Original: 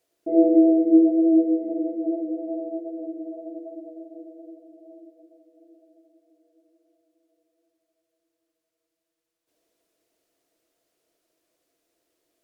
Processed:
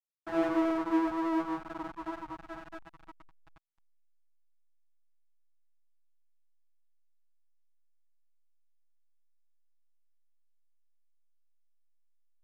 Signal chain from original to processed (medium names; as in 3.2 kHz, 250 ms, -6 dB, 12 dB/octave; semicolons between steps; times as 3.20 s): hysteresis with a dead band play -22.5 dBFS; resonant low shelf 680 Hz -9 dB, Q 3; trim -1.5 dB